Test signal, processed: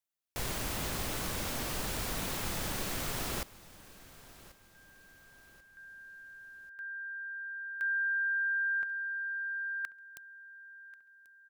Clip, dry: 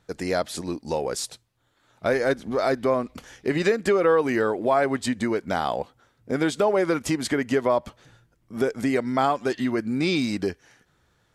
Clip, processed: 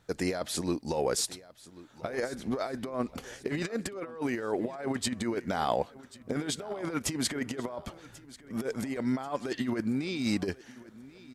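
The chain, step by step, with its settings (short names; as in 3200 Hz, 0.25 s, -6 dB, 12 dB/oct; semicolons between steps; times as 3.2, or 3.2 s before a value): high shelf 10000 Hz +3 dB; negative-ratio compressor -26 dBFS, ratio -0.5; on a send: feedback echo 1.088 s, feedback 43%, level -19.5 dB; on the sum: gain -4.5 dB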